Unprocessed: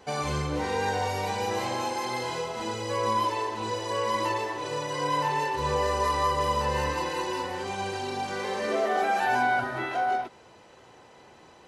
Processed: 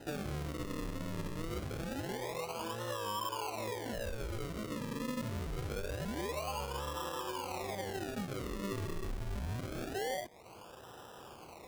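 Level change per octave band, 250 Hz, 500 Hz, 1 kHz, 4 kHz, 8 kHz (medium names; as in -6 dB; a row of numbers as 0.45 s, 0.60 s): -5.0 dB, -11.0 dB, -16.0 dB, -9.5 dB, -8.0 dB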